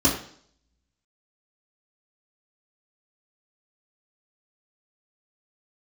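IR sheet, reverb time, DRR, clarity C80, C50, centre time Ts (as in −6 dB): 0.55 s, −6.5 dB, 10.0 dB, 6.5 dB, 38 ms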